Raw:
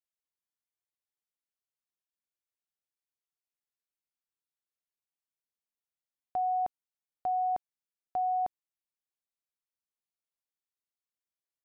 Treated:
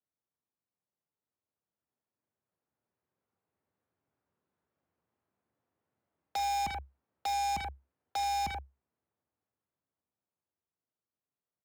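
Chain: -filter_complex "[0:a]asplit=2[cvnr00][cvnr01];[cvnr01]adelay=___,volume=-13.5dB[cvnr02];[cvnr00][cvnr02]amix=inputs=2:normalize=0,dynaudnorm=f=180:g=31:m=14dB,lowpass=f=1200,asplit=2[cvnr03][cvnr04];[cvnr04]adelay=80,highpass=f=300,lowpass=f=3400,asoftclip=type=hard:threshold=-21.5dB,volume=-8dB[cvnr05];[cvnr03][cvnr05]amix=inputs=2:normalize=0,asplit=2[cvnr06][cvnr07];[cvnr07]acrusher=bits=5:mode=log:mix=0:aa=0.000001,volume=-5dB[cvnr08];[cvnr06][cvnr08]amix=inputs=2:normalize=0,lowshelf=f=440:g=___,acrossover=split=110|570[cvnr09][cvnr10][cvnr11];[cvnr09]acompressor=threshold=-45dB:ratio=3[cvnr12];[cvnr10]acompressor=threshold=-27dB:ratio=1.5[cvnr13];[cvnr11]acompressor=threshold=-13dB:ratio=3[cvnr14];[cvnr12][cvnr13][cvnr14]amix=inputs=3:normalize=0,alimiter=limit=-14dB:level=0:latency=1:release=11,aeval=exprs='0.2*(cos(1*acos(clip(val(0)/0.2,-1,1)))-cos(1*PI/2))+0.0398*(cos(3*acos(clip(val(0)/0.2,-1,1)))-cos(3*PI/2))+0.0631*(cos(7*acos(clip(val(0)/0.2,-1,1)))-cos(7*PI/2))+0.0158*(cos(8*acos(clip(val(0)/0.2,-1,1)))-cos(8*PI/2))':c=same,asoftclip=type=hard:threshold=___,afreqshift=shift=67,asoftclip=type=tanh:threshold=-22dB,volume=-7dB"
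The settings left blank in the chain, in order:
40, 7, -15dB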